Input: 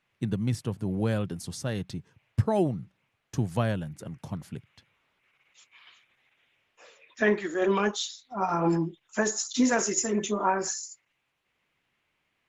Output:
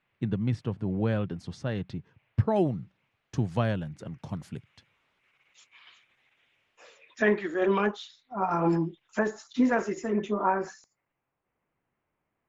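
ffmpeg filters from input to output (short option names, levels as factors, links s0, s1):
-af "asetnsamples=n=441:p=0,asendcmd='2.56 lowpass f 5100;4.29 lowpass f 8900;7.22 lowpass f 3600;7.86 lowpass f 2200;8.51 lowpass f 4700;9.19 lowpass f 2100;10.84 lowpass f 1100',lowpass=3100"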